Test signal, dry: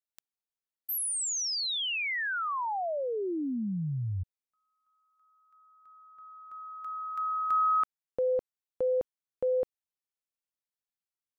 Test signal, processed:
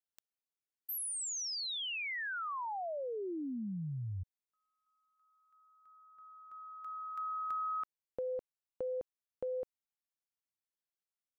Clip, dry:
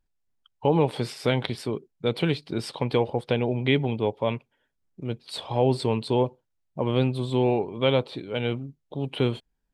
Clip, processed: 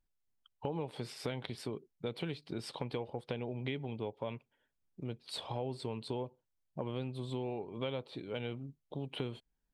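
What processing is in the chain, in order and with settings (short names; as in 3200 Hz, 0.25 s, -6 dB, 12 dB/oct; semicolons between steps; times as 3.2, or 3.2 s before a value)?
compressor 4:1, threshold -30 dBFS; gain -6 dB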